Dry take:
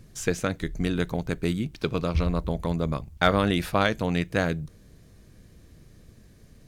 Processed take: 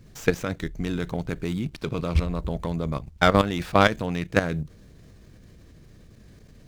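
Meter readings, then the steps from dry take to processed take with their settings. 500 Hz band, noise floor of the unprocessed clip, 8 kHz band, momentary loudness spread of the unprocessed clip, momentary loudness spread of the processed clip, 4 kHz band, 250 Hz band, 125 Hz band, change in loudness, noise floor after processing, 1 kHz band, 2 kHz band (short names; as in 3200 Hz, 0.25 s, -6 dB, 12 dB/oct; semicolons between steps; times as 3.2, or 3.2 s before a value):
+2.0 dB, -54 dBFS, -2.5 dB, 6 LU, 11 LU, +0.5 dB, 0.0 dB, +0.5 dB, +1.5 dB, -51 dBFS, +3.0 dB, +2.0 dB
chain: level quantiser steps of 11 dB; running maximum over 3 samples; gain +6 dB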